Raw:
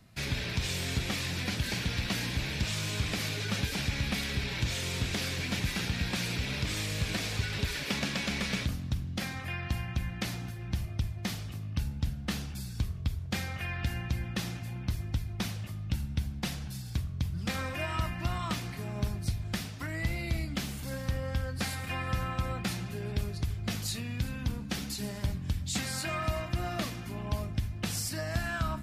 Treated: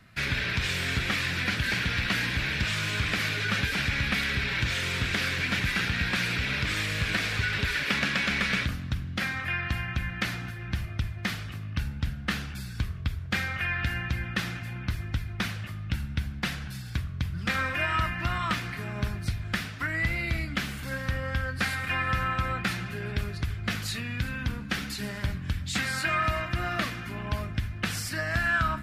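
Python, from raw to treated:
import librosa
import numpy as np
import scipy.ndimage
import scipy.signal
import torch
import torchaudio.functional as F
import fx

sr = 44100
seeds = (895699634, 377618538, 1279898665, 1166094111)

y = fx.curve_eq(x, sr, hz=(870.0, 1500.0, 6400.0), db=(0, 11, -3))
y = F.gain(torch.from_numpy(y), 1.5).numpy()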